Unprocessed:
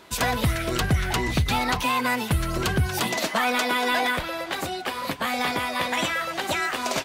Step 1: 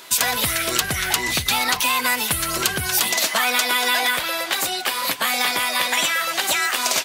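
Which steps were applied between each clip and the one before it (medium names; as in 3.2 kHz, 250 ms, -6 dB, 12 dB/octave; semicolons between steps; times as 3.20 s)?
tilt EQ +3.5 dB/octave; compression 2:1, threshold -24 dBFS, peak gain reduction 5.5 dB; trim +5 dB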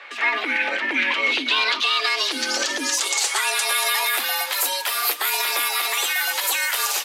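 peak limiter -13 dBFS, peak gain reduction 10.5 dB; low-pass sweep 2 kHz -> 13 kHz, 0.74–4.12 s; frequency shift +190 Hz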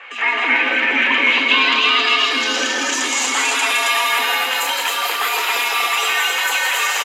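loudspeakers at several distances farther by 56 m -5 dB, 93 m -3 dB; reverberation RT60 3.6 s, pre-delay 3 ms, DRR 6 dB; trim -4 dB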